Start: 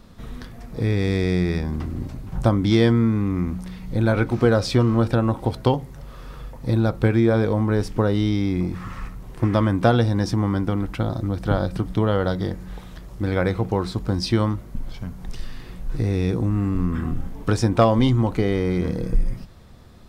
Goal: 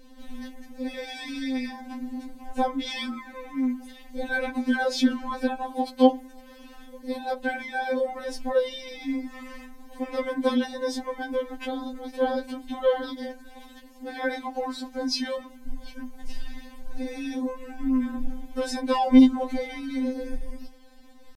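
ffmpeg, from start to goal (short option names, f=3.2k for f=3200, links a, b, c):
-af "asuperstop=centerf=1200:order=8:qfactor=4.8,atempo=0.94,afftfilt=real='re*3.46*eq(mod(b,12),0)':imag='im*3.46*eq(mod(b,12),0)':win_size=2048:overlap=0.75"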